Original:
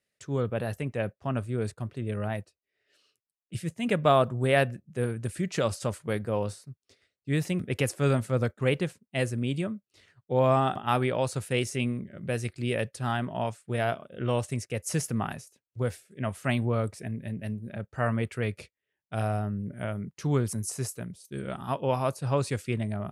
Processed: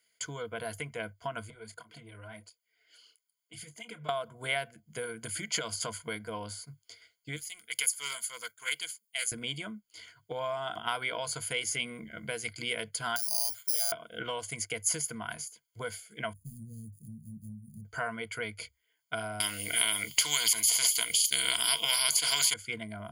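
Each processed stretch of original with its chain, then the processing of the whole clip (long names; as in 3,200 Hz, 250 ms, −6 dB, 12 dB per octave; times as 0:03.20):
0:01.50–0:04.09: downward compressor 10 to 1, threshold −41 dBFS + double-tracking delay 27 ms −13 dB + through-zero flanger with one copy inverted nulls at 1.5 Hz, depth 5.8 ms
0:07.36–0:09.32: first difference + highs frequency-modulated by the lows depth 0.21 ms
0:13.16–0:13.92: downward compressor 4 to 1, threshold −45 dBFS + bad sample-rate conversion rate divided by 8×, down filtered, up zero stuff
0:16.33–0:17.85: running median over 41 samples + elliptic band-stop filter 180–9,000 Hz, stop band 80 dB
0:19.40–0:22.54: high shelf with overshoot 2,100 Hz +12 dB, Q 3 + every bin compressed towards the loudest bin 4 to 1
whole clip: EQ curve with evenly spaced ripples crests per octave 1.8, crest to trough 16 dB; downward compressor 6 to 1, threshold −33 dBFS; tilt shelving filter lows −9 dB, about 650 Hz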